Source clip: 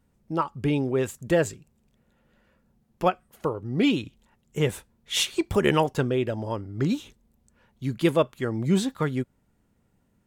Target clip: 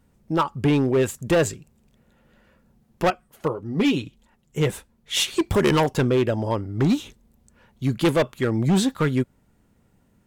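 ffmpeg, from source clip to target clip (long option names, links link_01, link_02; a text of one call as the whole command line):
ffmpeg -i in.wav -filter_complex "[0:a]asettb=1/sr,asplit=3[link_01][link_02][link_03];[link_01]atrim=end=3.104[link_04];[link_02]atrim=start=3.1:end=5.28,asetpts=PTS-STARTPTS,afade=type=in:duration=0.004:curve=qsin,afade=type=out:start_time=2.176:duration=0.004:curve=qsin,flanger=delay=3:depth=4.9:regen=-33:speed=1.7:shape=triangular[link_05];[link_03]atrim=start=5.276[link_06];[link_04][link_05]acrossfade=duration=0.004:curve1=hsin:curve2=qsin[link_07];[link_07][link_06]acrossfade=duration=0.004:curve1=qsin:curve2=hsin,asoftclip=type=hard:threshold=-20.5dB,volume=6dB" out.wav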